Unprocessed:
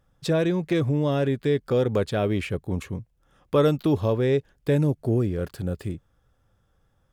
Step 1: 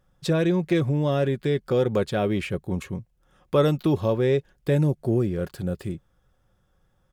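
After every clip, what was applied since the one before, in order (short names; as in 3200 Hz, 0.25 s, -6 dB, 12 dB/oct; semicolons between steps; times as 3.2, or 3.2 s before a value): comb 5.5 ms, depth 30%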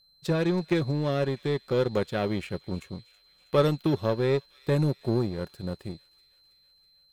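whine 4100 Hz -45 dBFS; power-law curve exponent 1.4; thin delay 0.323 s, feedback 66%, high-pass 2800 Hz, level -17 dB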